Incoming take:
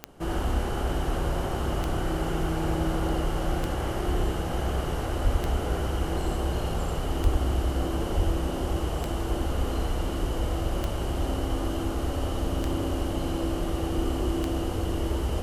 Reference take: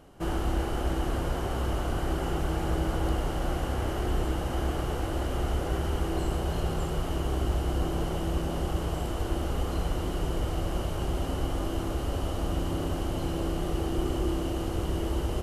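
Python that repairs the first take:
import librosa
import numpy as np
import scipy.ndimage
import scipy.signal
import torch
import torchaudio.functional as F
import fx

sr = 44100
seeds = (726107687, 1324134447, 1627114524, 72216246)

y = fx.fix_declick_ar(x, sr, threshold=10.0)
y = fx.highpass(y, sr, hz=140.0, slope=24, at=(5.23, 5.35), fade=0.02)
y = fx.highpass(y, sr, hz=140.0, slope=24, at=(7.23, 7.35), fade=0.02)
y = fx.highpass(y, sr, hz=140.0, slope=24, at=(8.16, 8.28), fade=0.02)
y = fx.fix_echo_inverse(y, sr, delay_ms=87, level_db=-3.0)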